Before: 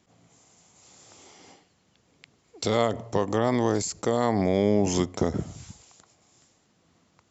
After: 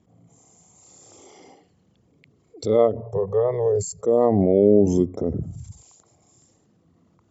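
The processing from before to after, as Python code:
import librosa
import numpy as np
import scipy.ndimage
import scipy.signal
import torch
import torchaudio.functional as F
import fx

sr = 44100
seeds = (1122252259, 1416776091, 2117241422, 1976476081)

y = fx.envelope_sharpen(x, sr, power=2.0)
y = fx.ellip_bandstop(y, sr, low_hz=180.0, high_hz=410.0, order=3, stop_db=40, at=(3.02, 4.06))
y = fx.hpss(y, sr, part='percussive', gain_db=-13)
y = y * 10.0 ** (7.5 / 20.0)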